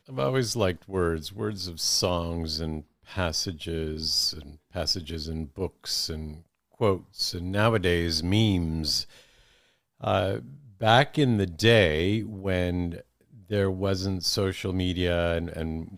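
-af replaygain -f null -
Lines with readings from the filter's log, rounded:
track_gain = +6.2 dB
track_peak = 0.419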